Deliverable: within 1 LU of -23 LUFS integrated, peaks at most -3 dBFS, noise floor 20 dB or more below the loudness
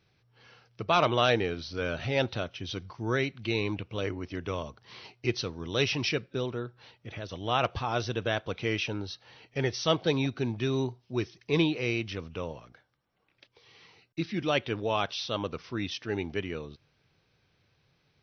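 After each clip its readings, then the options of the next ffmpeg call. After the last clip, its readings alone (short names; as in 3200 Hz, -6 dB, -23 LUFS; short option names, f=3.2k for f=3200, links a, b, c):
loudness -31.0 LUFS; peak -11.5 dBFS; loudness target -23.0 LUFS
-> -af "volume=8dB"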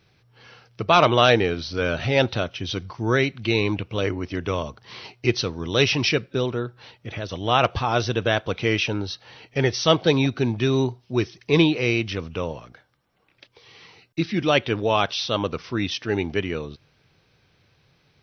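loudness -23.0 LUFS; peak -3.5 dBFS; noise floor -63 dBFS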